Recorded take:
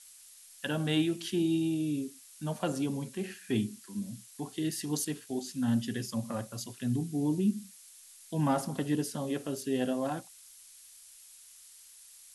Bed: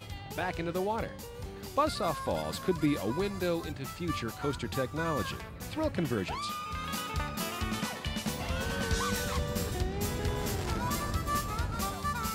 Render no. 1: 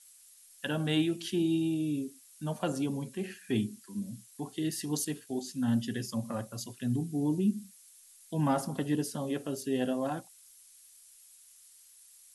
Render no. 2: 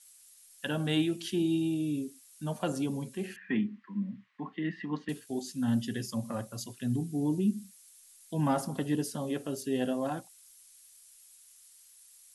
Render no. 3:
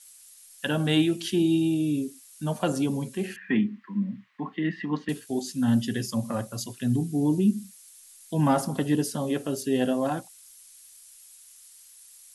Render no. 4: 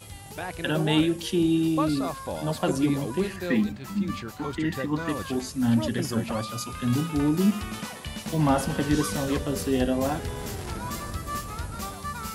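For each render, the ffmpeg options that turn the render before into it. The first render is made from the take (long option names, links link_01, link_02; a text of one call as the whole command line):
ffmpeg -i in.wav -af "afftdn=noise_reduction=6:noise_floor=-55" out.wav
ffmpeg -i in.wav -filter_complex "[0:a]asettb=1/sr,asplit=3[link_01][link_02][link_03];[link_01]atrim=end=3.364[link_04];[link_02]atrim=start=3.36:end=5.09,asetpts=PTS-STARTPTS,afade=type=in:duration=0.004:curve=qsin,afade=type=out:start_time=1.726:duration=0.004:curve=qsin,highpass=frequency=170:width=0.5412,highpass=frequency=170:width=1.3066,equalizer=frequency=180:width_type=q:width=4:gain=8,equalizer=frequency=400:width_type=q:width=4:gain=-7,equalizer=frequency=680:width_type=q:width=4:gain=-5,equalizer=frequency=1100:width_type=q:width=4:gain=10,equalizer=frequency=1900:width_type=q:width=4:gain=10,lowpass=frequency=2700:width=0.5412,lowpass=frequency=2700:width=1.3066[link_05];[link_03]atrim=start=5.086[link_06];[link_04][link_05]acrossfade=duration=0.004:curve1=hsin:curve2=qsin[link_07];[link_07][link_06]acrossfade=duration=0.004:curve1=qsin:curve2=hsin" out.wav
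ffmpeg -i in.wav -af "volume=6dB" out.wav
ffmpeg -i in.wav -i bed.wav -filter_complex "[1:a]volume=-1dB[link_01];[0:a][link_01]amix=inputs=2:normalize=0" out.wav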